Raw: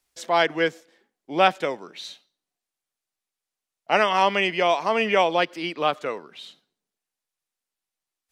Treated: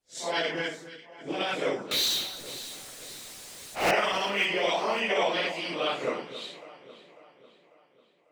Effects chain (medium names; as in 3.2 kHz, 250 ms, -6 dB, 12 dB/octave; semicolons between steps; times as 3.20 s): phase randomisation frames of 200 ms; graphic EQ 125/250/500/2000/4000/8000 Hz +11/+6/+6/+4/+6/+9 dB; 0.66–1.41 s: compression 2.5:1, threshold -20 dBFS, peak gain reduction 6 dB; peak limiter -7.5 dBFS, peak gain reduction 6 dB; harmonic-percussive split harmonic -14 dB; 1.91–3.91 s: power-law waveshaper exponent 0.35; on a send: echo whose repeats swap between lows and highs 273 ms, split 1.7 kHz, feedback 69%, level -12 dB; on the sum: tape noise reduction on one side only decoder only; trim -3 dB